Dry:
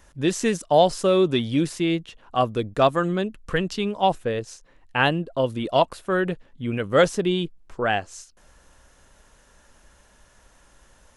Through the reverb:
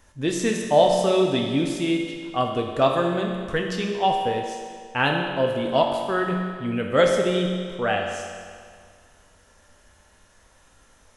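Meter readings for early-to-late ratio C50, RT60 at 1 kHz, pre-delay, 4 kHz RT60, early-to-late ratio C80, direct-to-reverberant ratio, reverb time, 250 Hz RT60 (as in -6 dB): 3.0 dB, 2.0 s, 5 ms, 1.8 s, 4.5 dB, 0.5 dB, 2.0 s, 2.0 s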